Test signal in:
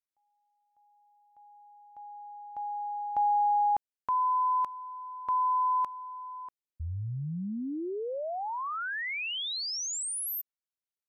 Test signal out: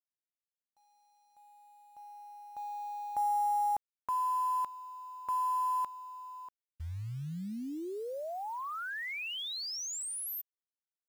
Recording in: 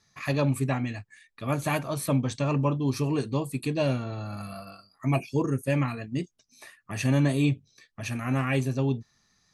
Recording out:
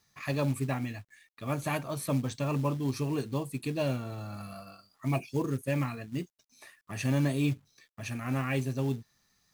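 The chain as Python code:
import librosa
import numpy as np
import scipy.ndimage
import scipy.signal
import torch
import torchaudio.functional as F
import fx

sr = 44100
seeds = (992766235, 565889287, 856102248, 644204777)

y = fx.quant_companded(x, sr, bits=6)
y = y * librosa.db_to_amplitude(-4.5)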